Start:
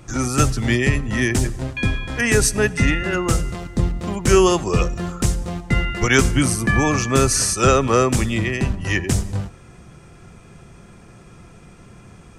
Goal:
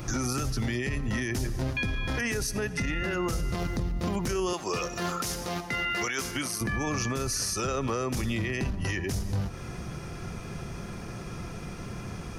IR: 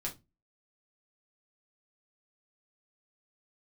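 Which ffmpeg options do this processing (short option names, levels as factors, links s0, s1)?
-filter_complex "[0:a]asettb=1/sr,asplit=3[s0][s1][s2];[s0]atrim=end=4.534[s3];[s1]atrim=start=4.53:end=6.61,asetpts=PTS-STARTPTS,afade=t=in:d=0.004:c=qsin,afade=t=out:st=2.076:d=0.004:c=qsin,highpass=f=650:p=1[s4];[s2]atrim=start=6.606[s5];[s3][s4]acrossfade=d=0.004:c1=hsin:c2=qsin[s6];[s6][s5]acrossfade=d=0.004:c1=qsin:c2=hsin,acompressor=threshold=0.0355:ratio=12,alimiter=level_in=1.5:limit=0.0631:level=0:latency=1:release=18,volume=0.668,aexciter=amount=1.2:drive=4.1:freq=4500,volume=2"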